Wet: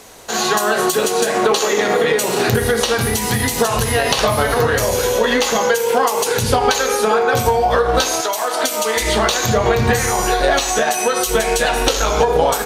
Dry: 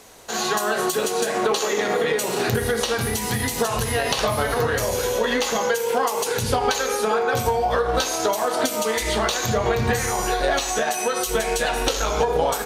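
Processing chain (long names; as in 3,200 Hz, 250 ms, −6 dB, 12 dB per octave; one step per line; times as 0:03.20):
0:08.20–0:08.95: high-pass filter 1,300 Hz → 390 Hz 6 dB per octave
level +6 dB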